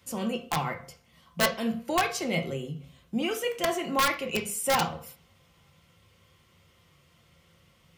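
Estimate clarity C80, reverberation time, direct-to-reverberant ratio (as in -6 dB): 17.0 dB, 0.45 s, 2.0 dB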